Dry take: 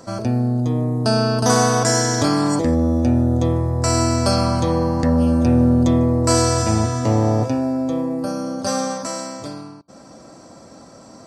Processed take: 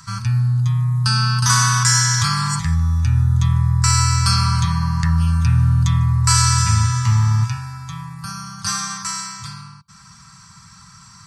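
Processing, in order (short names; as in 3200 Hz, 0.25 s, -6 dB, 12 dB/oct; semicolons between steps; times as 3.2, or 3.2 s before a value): inverse Chebyshev band-stop 260–700 Hz, stop band 40 dB; gain +5 dB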